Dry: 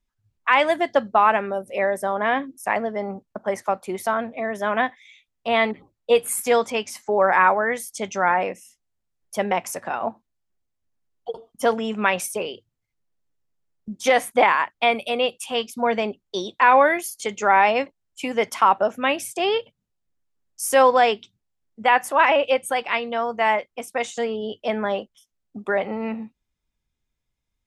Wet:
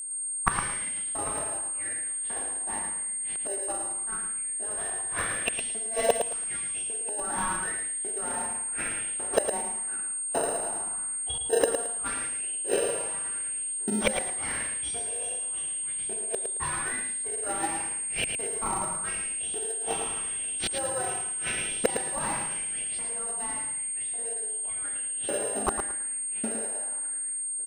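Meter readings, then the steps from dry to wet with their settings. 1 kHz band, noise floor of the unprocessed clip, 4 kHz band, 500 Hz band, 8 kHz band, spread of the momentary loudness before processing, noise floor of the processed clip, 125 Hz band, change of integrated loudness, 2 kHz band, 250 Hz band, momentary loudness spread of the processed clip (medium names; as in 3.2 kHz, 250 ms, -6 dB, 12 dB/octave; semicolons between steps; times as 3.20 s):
-15.5 dB, -79 dBFS, -8.0 dB, -11.5 dB, +11.5 dB, 13 LU, -33 dBFS, no reading, -6.5 dB, -12.5 dB, -10.0 dB, 3 LU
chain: tracing distortion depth 0.16 ms; level-controlled noise filter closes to 1.4 kHz, open at -14 dBFS; harmonic-percussive split percussive +5 dB; treble shelf 6.5 kHz -7.5 dB; two-slope reverb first 0.87 s, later 2.9 s, from -25 dB, DRR -6 dB; inverted gate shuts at -16 dBFS, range -33 dB; LFO high-pass saw up 0.87 Hz 310–4000 Hz; in parallel at -6 dB: sample-and-hold 39×; on the sum: whistle 8.6 kHz -37 dBFS; on a send: feedback delay 110 ms, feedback 21%, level -7 dB; on the sum: trim +3.5 dB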